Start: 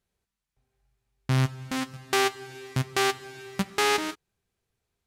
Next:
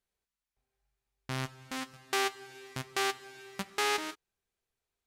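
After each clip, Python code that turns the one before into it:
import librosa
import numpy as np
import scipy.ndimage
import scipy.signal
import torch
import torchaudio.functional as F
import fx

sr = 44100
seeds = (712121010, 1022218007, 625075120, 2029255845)

y = fx.peak_eq(x, sr, hz=120.0, db=-10.0, octaves=2.3)
y = y * librosa.db_to_amplitude(-5.5)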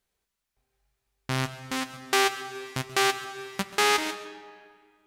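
y = x + 10.0 ** (-18.5 / 20.0) * np.pad(x, (int(134 * sr / 1000.0), 0))[:len(x)]
y = fx.rev_freeverb(y, sr, rt60_s=2.1, hf_ratio=0.7, predelay_ms=90, drr_db=15.0)
y = y * librosa.db_to_amplitude(7.5)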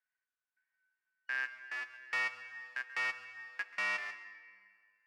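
y = fx.band_shuffle(x, sr, order='2143')
y = fx.bandpass_q(y, sr, hz=1600.0, q=2.0)
y = y * librosa.db_to_amplitude(-6.5)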